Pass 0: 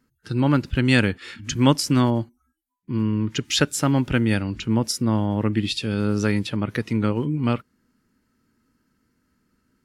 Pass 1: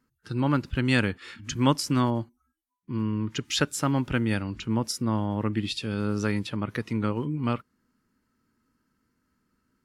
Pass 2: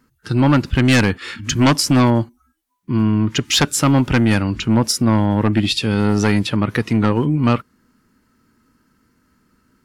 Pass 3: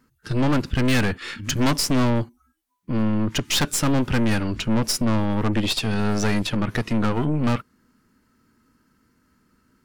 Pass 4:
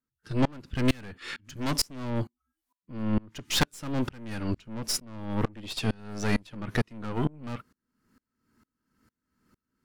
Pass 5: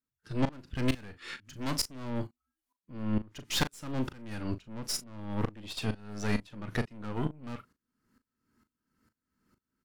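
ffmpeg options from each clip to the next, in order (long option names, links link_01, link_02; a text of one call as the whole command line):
ffmpeg -i in.wav -af "equalizer=frequency=1100:width_type=o:width=0.69:gain=4.5,volume=-5.5dB" out.wav
ffmpeg -i in.wav -af "aeval=exprs='0.398*sin(PI/2*2.82*val(0)/0.398)':channel_layout=same" out.wav
ffmpeg -i in.wav -af "aeval=exprs='(tanh(7.08*val(0)+0.6)-tanh(0.6))/7.08':channel_layout=same" out.wav
ffmpeg -i in.wav -af "aeval=exprs='val(0)*pow(10,-31*if(lt(mod(-2.2*n/s,1),2*abs(-2.2)/1000),1-mod(-2.2*n/s,1)/(2*abs(-2.2)/1000),(mod(-2.2*n/s,1)-2*abs(-2.2)/1000)/(1-2*abs(-2.2)/1000))/20)':channel_layout=same" out.wav
ffmpeg -i in.wav -filter_complex "[0:a]asplit=2[link_01][link_02];[link_02]adelay=38,volume=-11.5dB[link_03];[link_01][link_03]amix=inputs=2:normalize=0,volume=-4.5dB" out.wav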